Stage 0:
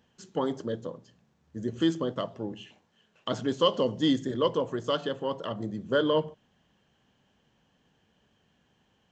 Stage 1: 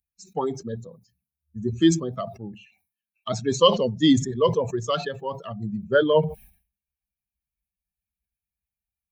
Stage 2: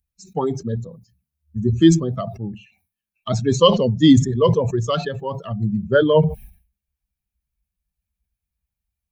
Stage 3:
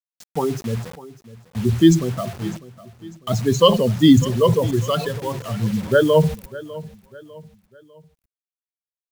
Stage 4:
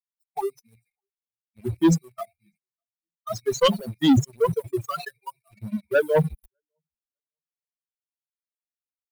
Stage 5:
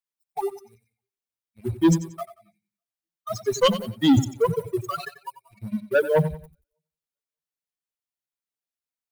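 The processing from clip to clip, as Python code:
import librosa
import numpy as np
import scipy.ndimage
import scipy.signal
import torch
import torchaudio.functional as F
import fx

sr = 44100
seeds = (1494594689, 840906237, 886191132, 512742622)

y1 = fx.bin_expand(x, sr, power=2.0)
y1 = fx.sustainer(y1, sr, db_per_s=130.0)
y1 = F.gain(torch.from_numpy(y1), 9.0).numpy()
y2 = fx.low_shelf(y1, sr, hz=190.0, db=12.0)
y2 = F.gain(torch.from_numpy(y2), 2.0).numpy()
y3 = fx.quant_dither(y2, sr, seeds[0], bits=6, dither='none')
y3 = fx.echo_feedback(y3, sr, ms=600, feedback_pct=41, wet_db=-18.0)
y4 = fx.bin_expand(y3, sr, power=3.0)
y4 = fx.leveller(y4, sr, passes=2)
y4 = F.gain(torch.from_numpy(y4), -6.0).numpy()
y5 = fx.echo_feedback(y4, sr, ms=91, feedback_pct=32, wet_db=-14.0)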